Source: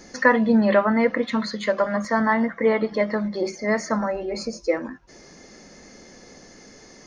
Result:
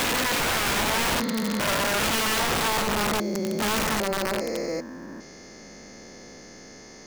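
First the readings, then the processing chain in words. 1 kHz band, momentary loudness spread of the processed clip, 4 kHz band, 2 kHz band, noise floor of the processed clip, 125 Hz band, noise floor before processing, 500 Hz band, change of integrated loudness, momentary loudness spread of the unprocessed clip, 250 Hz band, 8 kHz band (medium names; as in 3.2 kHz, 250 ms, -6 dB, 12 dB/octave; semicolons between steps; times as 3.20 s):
-0.5 dB, 21 LU, +11.0 dB, -0.5 dB, -45 dBFS, 0.0 dB, -48 dBFS, -7.0 dB, -2.0 dB, 9 LU, -6.5 dB, no reading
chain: spectrogram pixelated in time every 400 ms; short-mantissa float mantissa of 4-bit; integer overflow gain 23 dB; trim +3.5 dB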